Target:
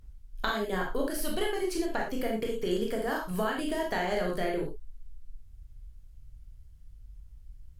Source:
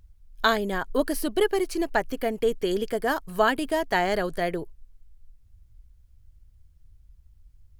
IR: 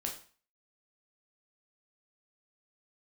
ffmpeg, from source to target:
-filter_complex "[0:a]asettb=1/sr,asplit=3[link_01][link_02][link_03];[link_01]atrim=end=1.104[link_04];[link_02]atrim=start=1.1:end=1.51,asetpts=PTS-STARTPTS,afade=type=in:duration=0.004:curve=qsin,afade=type=out:start_time=0.406:duration=0.004:curve=qsin,equalizer=frequency=320:width=1.5:gain=-9[link_05];[link_03]atrim=start=1.506[link_06];[link_04][link_05]acrossfade=duration=0.004:curve1=hsin:curve2=qsin[link_07];[link_07][link_06]acrossfade=duration=0.004:curve1=qsin:curve2=hsin,acompressor=threshold=-29dB:ratio=12[link_08];[1:a]atrim=start_sample=2205,atrim=end_sample=3969,asetrate=30870,aresample=44100[link_09];[link_08][link_09]afir=irnorm=-1:irlink=0"

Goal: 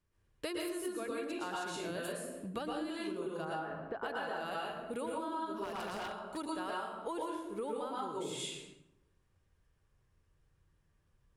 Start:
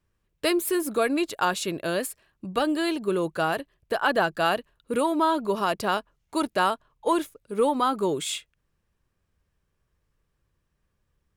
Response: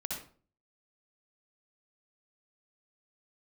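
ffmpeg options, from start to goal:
-filter_complex "[0:a]asplit=3[link_01][link_02][link_03];[link_01]afade=type=out:start_time=3.44:duration=0.02[link_04];[link_02]lowpass=1700,afade=type=in:start_time=3.44:duration=0.02,afade=type=out:start_time=4.02:duration=0.02[link_05];[link_03]afade=type=in:start_time=4.02:duration=0.02[link_06];[link_04][link_05][link_06]amix=inputs=3:normalize=0[link_07];[1:a]atrim=start_sample=2205,asetrate=23373,aresample=44100[link_08];[link_07][link_08]afir=irnorm=-1:irlink=0,acompressor=threshold=-30dB:ratio=6,asplit=3[link_09][link_10][link_11];[link_09]afade=type=out:start_time=5.63:duration=0.02[link_12];[link_10]aeval=exprs='0.0422*(abs(mod(val(0)/0.0422+3,4)-2)-1)':channel_layout=same,afade=type=in:start_time=5.63:duration=0.02,afade=type=out:start_time=6.36:duration=0.02[link_13];[link_11]afade=type=in:start_time=6.36:duration=0.02[link_14];[link_12][link_13][link_14]amix=inputs=3:normalize=0,volume=-7dB"

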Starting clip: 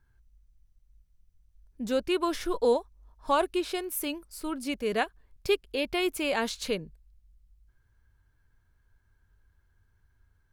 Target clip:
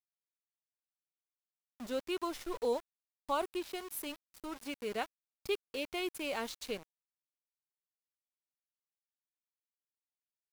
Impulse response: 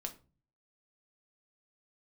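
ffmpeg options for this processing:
-af "lowshelf=frequency=310:gain=-3,bandreject=frequency=1700:width=8.9,aeval=exprs='val(0)*gte(abs(val(0)),0.0158)':channel_layout=same,volume=-8dB"

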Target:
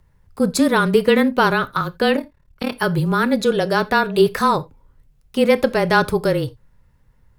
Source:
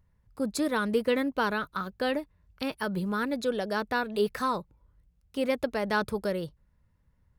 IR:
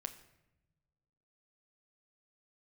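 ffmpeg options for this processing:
-filter_complex "[0:a]afreqshift=-25,asettb=1/sr,asplit=3[link_01][link_02][link_03];[link_01]atrim=end=2.164[link_04];[link_02]atrim=start=2.16:end=2.76,asetpts=PTS-STARTPTS,afade=type=in:duration=0.004:curve=qsin,afade=type=out:start_time=0.596:duration=0.004:curve=qsin,tremolo=f=37:d=0.919[link_05];[link_03]atrim=start=2.756[link_06];[link_04][link_05]acrossfade=duration=0.004:curve1=hsin:curve2=qsin[link_07];[link_07][link_06]acrossfade=duration=0.004:curve1=qsin:curve2=hsin,asplit=2[link_08][link_09];[1:a]atrim=start_sample=2205,atrim=end_sample=3969[link_10];[link_09][link_10]afir=irnorm=-1:irlink=0,volume=2.5dB[link_11];[link_08][link_11]amix=inputs=2:normalize=0,volume=6dB"

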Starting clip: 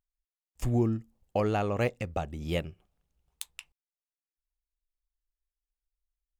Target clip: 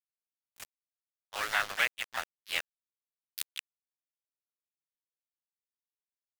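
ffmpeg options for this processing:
ffmpeg -i in.wav -filter_complex "[0:a]highpass=frequency=1500:width_type=q:width=2.9,aeval=exprs='val(0)*gte(abs(val(0)),0.0211)':channel_layout=same,asplit=3[link_01][link_02][link_03];[link_02]asetrate=52444,aresample=44100,atempo=0.840896,volume=-8dB[link_04];[link_03]asetrate=58866,aresample=44100,atempo=0.749154,volume=-4dB[link_05];[link_01][link_04][link_05]amix=inputs=3:normalize=0,volume=1.5dB" out.wav

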